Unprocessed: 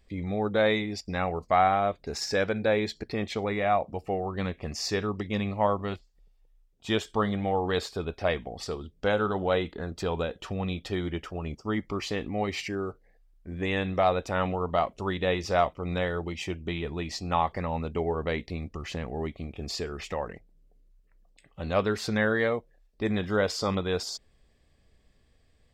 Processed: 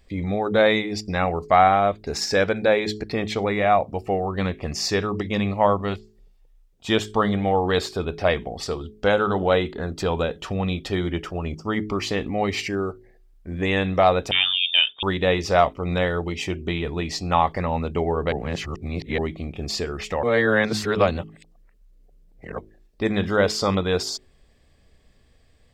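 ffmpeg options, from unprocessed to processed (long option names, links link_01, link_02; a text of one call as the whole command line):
ffmpeg -i in.wav -filter_complex "[0:a]asettb=1/sr,asplit=3[link_01][link_02][link_03];[link_01]atrim=end=14.314[link_04];[link_02]atrim=start=14.31:end=15.03,asetpts=PTS-STARTPTS,afade=type=in:duration=0.004:curve=qsin,afade=type=out:start_time=0.716:duration=0.004:curve=qsin,lowpass=frequency=3100:width_type=q:width=0.5098,lowpass=frequency=3100:width_type=q:width=0.6013,lowpass=frequency=3100:width_type=q:width=0.9,lowpass=frequency=3100:width_type=q:width=2.563,afreqshift=-3700[link_05];[link_03]atrim=start=15.026[link_06];[link_04][link_05]acrossfade=duration=0.004:curve1=hsin:curve2=qsin[link_07];[link_07][link_06]acrossfade=duration=0.004:curve1=qsin:curve2=hsin,asplit=5[link_08][link_09][link_10][link_11][link_12];[link_08]atrim=end=18.322[link_13];[link_09]atrim=start=18.318:end=19.182,asetpts=PTS-STARTPTS,areverse[link_14];[link_10]atrim=start=19.178:end=20.232[link_15];[link_11]atrim=start=20.228:end=22.582,asetpts=PTS-STARTPTS,areverse[link_16];[link_12]atrim=start=22.578[link_17];[link_13][link_14]acrossfade=duration=0.004:curve1=hsin:curve2=hsin[link_18];[link_18][link_15]acrossfade=duration=0.004:curve1=hsin:curve2=hsin[link_19];[link_19][link_16]acrossfade=duration=0.004:curve1=hsin:curve2=hsin[link_20];[link_20][link_17]acrossfade=duration=0.004:curve1=hsin:curve2=hsin,bandreject=frequency=53.08:width_type=h:width=4,bandreject=frequency=106.16:width_type=h:width=4,bandreject=frequency=159.24:width_type=h:width=4,bandreject=frequency=212.32:width_type=h:width=4,bandreject=frequency=265.4:width_type=h:width=4,bandreject=frequency=318.48:width_type=h:width=4,bandreject=frequency=371.56:width_type=h:width=4,bandreject=frequency=424.64:width_type=h:width=4,volume=6.5dB" out.wav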